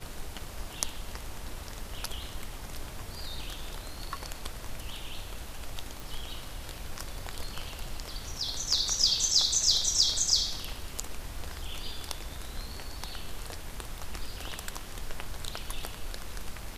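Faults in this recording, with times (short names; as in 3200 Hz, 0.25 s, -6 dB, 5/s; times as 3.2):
6 pop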